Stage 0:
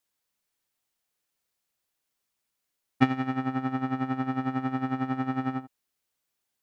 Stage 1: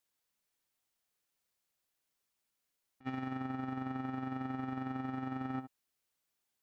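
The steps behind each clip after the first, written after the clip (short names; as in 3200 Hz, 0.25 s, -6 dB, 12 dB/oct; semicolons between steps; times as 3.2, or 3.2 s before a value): negative-ratio compressor -31 dBFS, ratio -0.5; gain -6.5 dB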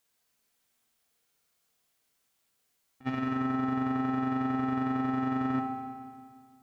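reverb RT60 1.9 s, pre-delay 3 ms, DRR 2 dB; gain +7 dB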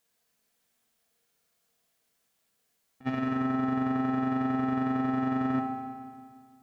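small resonant body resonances 200/470/660/1700 Hz, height 6 dB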